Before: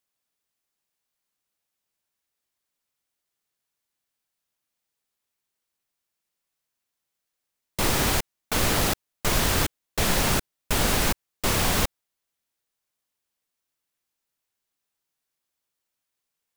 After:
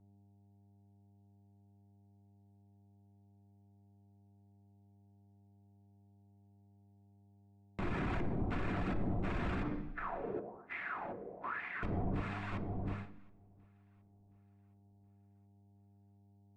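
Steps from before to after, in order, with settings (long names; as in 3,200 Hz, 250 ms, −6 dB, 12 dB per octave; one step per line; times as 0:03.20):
reverb reduction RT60 0.57 s
wave folding −19.5 dBFS
delay that swaps between a low-pass and a high-pass 360 ms, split 800 Hz, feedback 66%, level −8 dB
hum with harmonics 100 Hz, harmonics 9, −48 dBFS −6 dB per octave
head-to-tape spacing loss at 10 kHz 35 dB
noise gate with hold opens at −36 dBFS
0:09.63–0:11.83: LFO wah 1.1 Hz 440–2,100 Hz, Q 5.5
convolution reverb RT60 0.70 s, pre-delay 3 ms, DRR 8.5 dB
brickwall limiter −33.5 dBFS, peak gain reduction 14.5 dB
high-shelf EQ 2,200 Hz −11 dB
level +6 dB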